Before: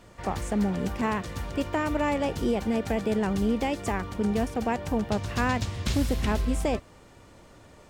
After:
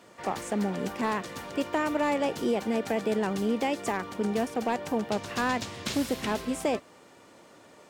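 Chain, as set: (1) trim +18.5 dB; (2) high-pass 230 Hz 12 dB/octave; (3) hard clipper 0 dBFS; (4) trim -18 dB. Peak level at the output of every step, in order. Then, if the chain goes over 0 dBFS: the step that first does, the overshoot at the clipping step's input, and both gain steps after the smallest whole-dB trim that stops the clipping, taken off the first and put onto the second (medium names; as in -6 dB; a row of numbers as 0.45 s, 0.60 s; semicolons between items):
+5.0 dBFS, +5.0 dBFS, 0.0 dBFS, -18.0 dBFS; step 1, 5.0 dB; step 1 +13.5 dB, step 4 -13 dB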